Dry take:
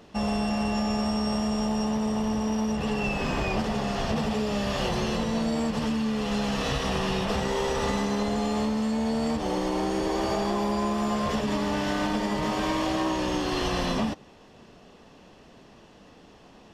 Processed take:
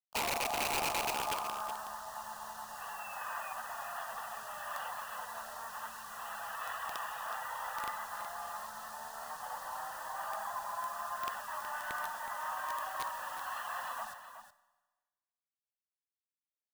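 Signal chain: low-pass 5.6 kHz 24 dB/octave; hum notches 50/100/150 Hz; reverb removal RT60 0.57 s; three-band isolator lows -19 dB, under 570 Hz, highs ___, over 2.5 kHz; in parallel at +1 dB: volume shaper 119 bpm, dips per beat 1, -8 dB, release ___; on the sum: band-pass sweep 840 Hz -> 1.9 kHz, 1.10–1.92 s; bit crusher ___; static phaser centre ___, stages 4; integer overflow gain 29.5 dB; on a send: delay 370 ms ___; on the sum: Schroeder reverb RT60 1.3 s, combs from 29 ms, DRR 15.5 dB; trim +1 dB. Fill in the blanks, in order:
-18 dB, 130 ms, 8-bit, 920 Hz, -10.5 dB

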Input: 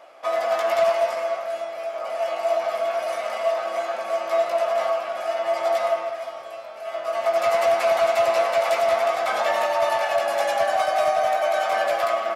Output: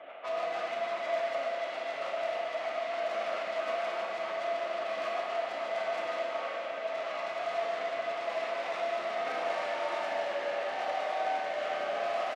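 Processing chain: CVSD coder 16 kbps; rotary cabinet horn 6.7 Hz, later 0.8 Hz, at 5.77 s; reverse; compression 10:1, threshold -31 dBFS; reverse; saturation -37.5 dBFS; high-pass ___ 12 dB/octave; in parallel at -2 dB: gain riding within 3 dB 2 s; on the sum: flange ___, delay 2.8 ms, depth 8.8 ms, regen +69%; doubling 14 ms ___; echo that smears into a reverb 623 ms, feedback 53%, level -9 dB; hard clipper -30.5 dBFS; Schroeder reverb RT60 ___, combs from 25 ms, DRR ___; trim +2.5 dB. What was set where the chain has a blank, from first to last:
320 Hz, 0.89 Hz, -14 dB, 1.9 s, -1 dB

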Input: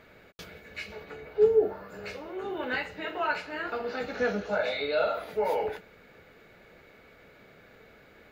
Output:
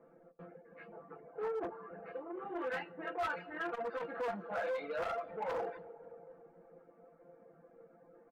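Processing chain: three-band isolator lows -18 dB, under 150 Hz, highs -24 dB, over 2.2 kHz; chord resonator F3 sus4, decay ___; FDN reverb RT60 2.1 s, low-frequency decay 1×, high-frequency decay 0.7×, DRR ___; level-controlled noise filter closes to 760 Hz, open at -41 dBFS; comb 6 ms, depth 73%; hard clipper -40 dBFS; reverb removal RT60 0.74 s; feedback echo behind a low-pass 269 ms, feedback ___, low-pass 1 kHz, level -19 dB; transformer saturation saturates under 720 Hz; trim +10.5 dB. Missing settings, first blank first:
0.2 s, 13.5 dB, 57%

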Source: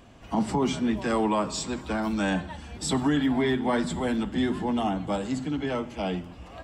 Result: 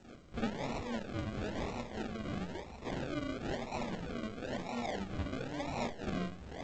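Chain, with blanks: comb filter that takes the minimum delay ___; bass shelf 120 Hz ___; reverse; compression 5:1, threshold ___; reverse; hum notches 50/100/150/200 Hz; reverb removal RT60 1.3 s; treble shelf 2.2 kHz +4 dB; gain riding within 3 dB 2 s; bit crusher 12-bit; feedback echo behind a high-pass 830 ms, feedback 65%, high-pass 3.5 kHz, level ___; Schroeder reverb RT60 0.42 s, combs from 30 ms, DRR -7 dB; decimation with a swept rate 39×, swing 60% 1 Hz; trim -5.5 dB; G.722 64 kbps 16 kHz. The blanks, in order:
1.2 ms, -7.5 dB, -37 dBFS, -22 dB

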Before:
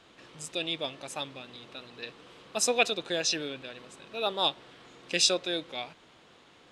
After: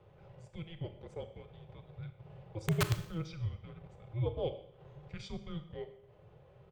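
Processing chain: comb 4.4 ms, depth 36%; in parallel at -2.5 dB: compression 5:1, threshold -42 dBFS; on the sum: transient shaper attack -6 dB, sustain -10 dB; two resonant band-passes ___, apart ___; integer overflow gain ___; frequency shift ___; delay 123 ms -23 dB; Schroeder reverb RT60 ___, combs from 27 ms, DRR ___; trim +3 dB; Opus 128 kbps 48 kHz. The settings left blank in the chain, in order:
600 Hz, 0.82 oct, 24.5 dB, -330 Hz, 0.69 s, 9 dB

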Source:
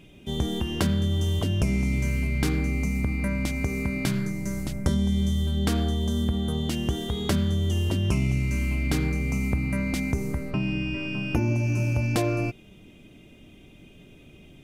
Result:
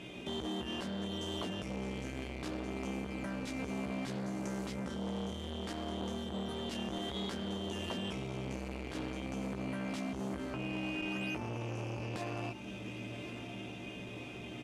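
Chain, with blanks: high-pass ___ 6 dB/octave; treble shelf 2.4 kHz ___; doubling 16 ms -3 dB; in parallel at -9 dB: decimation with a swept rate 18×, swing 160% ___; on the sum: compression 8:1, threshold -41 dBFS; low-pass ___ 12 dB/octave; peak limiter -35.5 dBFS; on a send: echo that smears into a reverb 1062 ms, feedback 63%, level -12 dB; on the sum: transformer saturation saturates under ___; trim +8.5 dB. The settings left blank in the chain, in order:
620 Hz, -5 dB, 0.59 Hz, 8.4 kHz, 590 Hz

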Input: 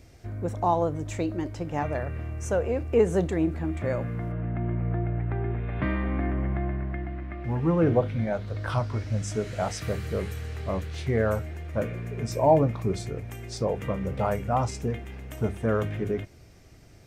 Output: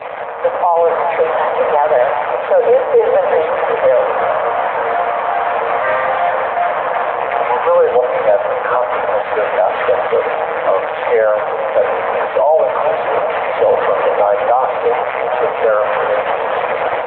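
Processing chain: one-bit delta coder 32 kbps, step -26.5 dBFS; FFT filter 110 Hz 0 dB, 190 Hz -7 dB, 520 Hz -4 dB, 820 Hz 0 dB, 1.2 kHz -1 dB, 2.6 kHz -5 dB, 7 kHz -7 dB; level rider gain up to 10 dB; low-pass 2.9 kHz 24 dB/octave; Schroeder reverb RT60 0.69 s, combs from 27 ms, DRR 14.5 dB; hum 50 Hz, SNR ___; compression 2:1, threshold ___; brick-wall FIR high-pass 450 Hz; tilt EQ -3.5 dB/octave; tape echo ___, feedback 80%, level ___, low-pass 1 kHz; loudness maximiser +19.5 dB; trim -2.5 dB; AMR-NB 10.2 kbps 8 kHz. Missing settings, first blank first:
29 dB, -21 dBFS, 375 ms, -13 dB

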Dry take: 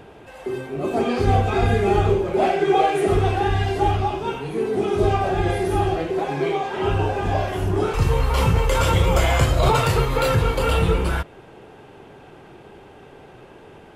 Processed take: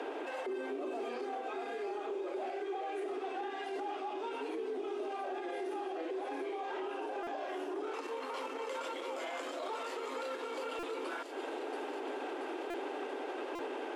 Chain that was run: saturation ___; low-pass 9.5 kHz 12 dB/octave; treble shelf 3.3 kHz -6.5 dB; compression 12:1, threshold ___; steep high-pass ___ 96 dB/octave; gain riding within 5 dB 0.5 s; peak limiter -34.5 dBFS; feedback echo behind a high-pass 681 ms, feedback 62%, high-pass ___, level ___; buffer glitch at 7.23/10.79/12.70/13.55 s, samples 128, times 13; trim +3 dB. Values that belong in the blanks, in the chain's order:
-11.5 dBFS, -32 dBFS, 260 Hz, 3.7 kHz, -4 dB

